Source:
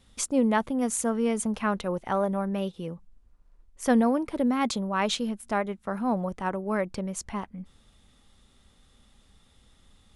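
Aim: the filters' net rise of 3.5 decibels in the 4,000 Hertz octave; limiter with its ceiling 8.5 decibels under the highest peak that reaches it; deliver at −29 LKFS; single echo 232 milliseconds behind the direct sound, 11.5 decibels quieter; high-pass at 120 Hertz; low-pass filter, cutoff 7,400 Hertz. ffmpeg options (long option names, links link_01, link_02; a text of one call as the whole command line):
ffmpeg -i in.wav -af "highpass=120,lowpass=7400,equalizer=frequency=4000:width_type=o:gain=4.5,alimiter=limit=-18.5dB:level=0:latency=1,aecho=1:1:232:0.266,volume=0.5dB" out.wav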